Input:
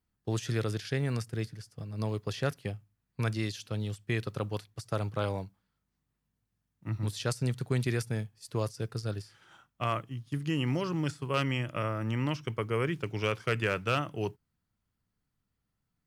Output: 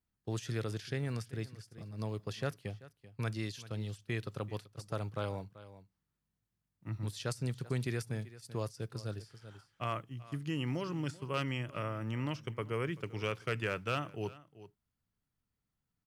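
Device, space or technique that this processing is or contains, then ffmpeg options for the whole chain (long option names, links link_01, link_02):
ducked delay: -filter_complex "[0:a]asplit=3[link_01][link_02][link_03];[link_02]adelay=386,volume=-9dB[link_04];[link_03]apad=whole_len=725372[link_05];[link_04][link_05]sidechaincompress=threshold=-35dB:ratio=10:attack=5.3:release=1030[link_06];[link_01][link_06]amix=inputs=2:normalize=0,volume=-5.5dB"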